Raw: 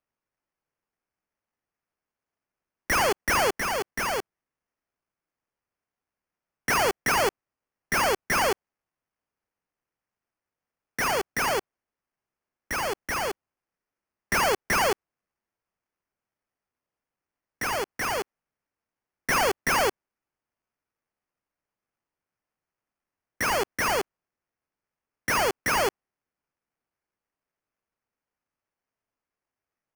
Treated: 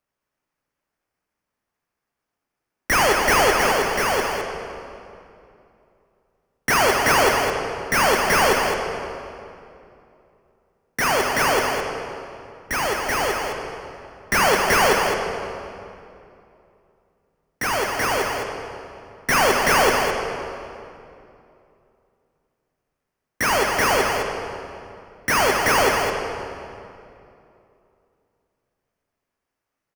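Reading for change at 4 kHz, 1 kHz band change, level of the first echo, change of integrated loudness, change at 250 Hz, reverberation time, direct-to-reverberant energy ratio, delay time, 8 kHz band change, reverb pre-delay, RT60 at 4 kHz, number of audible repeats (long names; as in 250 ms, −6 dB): +7.0 dB, +7.5 dB, −6.5 dB, +6.0 dB, +8.0 dB, 2.7 s, 0.5 dB, 211 ms, +6.0 dB, 5 ms, 1.9 s, 1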